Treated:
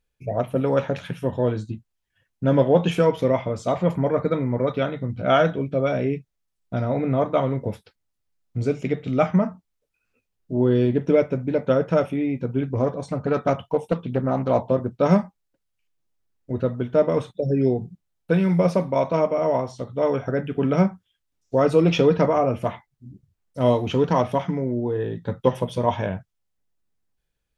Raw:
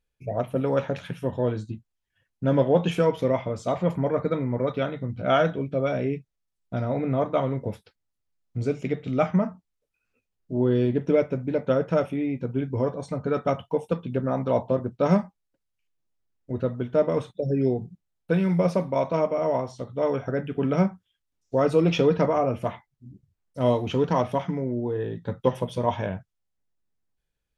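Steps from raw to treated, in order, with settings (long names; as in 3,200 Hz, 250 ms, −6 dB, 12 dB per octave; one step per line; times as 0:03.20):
0:12.63–0:14.68: highs frequency-modulated by the lows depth 0.31 ms
level +3 dB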